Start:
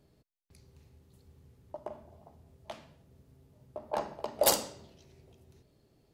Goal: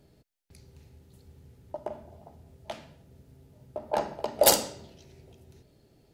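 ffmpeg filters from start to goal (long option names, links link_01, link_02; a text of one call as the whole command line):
ffmpeg -i in.wav -af "bandreject=frequency=1100:width=7,volume=5.5dB" out.wav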